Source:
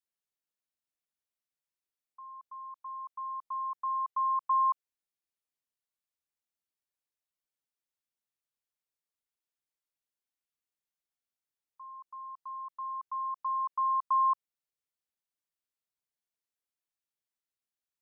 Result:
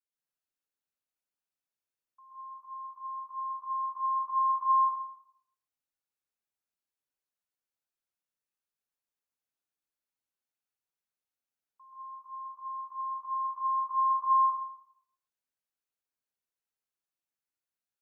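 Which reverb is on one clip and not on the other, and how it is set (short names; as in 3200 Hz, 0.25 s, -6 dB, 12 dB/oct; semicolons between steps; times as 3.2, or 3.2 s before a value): plate-style reverb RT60 0.72 s, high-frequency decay 0.5×, pre-delay 0.11 s, DRR -7.5 dB; gain -9 dB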